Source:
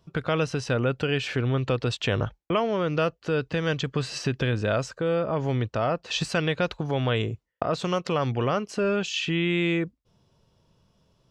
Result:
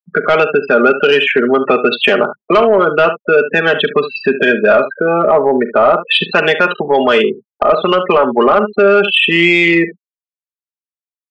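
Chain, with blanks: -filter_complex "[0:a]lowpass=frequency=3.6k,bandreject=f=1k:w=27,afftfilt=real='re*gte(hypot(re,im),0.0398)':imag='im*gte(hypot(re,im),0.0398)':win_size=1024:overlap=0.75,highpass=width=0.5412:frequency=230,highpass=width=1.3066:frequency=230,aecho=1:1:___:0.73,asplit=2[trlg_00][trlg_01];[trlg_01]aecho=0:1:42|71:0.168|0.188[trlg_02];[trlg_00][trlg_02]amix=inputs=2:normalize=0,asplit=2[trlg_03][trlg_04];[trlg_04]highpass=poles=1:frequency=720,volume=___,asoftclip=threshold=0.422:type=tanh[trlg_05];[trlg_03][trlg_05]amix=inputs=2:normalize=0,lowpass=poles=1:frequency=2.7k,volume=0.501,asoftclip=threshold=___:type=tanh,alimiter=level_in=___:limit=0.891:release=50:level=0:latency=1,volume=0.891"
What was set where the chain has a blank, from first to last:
4.9, 3.55, 0.299, 6.68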